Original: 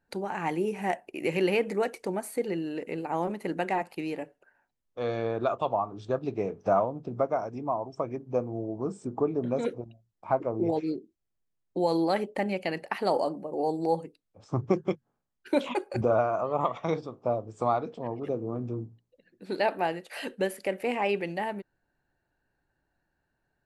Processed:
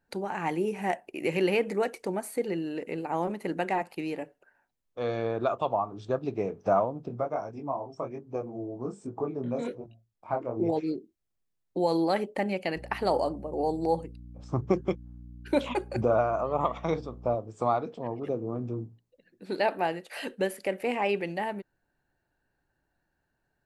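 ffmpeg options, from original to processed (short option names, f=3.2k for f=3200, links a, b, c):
-filter_complex "[0:a]asplit=3[a][b][c];[a]afade=t=out:st=7.08:d=0.02[d];[b]flanger=delay=18.5:depth=6.9:speed=1.2,afade=t=in:st=7.08:d=0.02,afade=t=out:st=10.56:d=0.02[e];[c]afade=t=in:st=10.56:d=0.02[f];[d][e][f]amix=inputs=3:normalize=0,asettb=1/sr,asplit=3[g][h][i];[g]atrim=end=12.764[j];[h]atrim=start=12.76:end=17.35,asetpts=PTS-STARTPTS,afade=t=in:d=0.004:c=qsin,afade=t=out:st=4.586:d=0.004:c=qsin,aeval=exprs='val(0)+0.00631*(sin(2*PI*60*n/s)+sin(2*PI*2*60*n/s)/2+sin(2*PI*3*60*n/s)/3+sin(2*PI*4*60*n/s)/4+sin(2*PI*5*60*n/s)/5)':c=same[k];[i]atrim=start=17.346[l];[j][k]acrossfade=d=0.004:c1=hsin:c2=qsin[m];[m][l]acrossfade=d=0.004:c1=qsin:c2=hsin"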